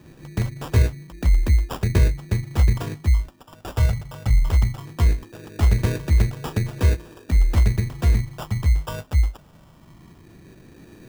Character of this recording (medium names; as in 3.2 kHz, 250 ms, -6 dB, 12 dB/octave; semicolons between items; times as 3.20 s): phasing stages 6, 0.19 Hz, lowest notch 340–2500 Hz; aliases and images of a low sample rate 2.1 kHz, jitter 0%